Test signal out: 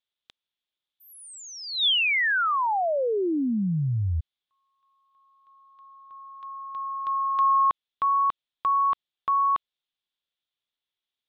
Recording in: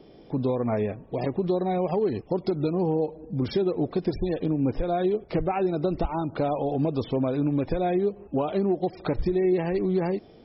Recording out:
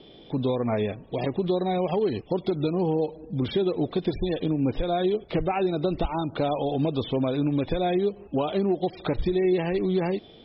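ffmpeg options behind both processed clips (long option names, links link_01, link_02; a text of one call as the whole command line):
ffmpeg -i in.wav -filter_complex "[0:a]lowpass=frequency=3500:width_type=q:width=5.9,acrossover=split=2600[link_01][link_02];[link_02]acompressor=threshold=-42dB:ratio=4:attack=1:release=60[link_03];[link_01][link_03]amix=inputs=2:normalize=0" out.wav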